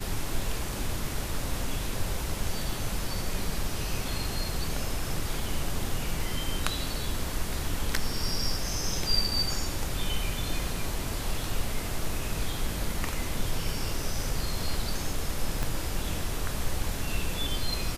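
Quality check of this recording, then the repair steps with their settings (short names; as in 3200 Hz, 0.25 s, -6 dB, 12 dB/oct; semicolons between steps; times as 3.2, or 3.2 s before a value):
15.63 pop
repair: de-click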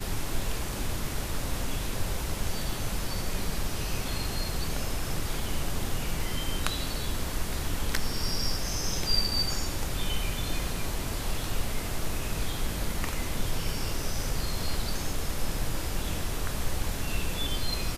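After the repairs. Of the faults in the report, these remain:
15.63 pop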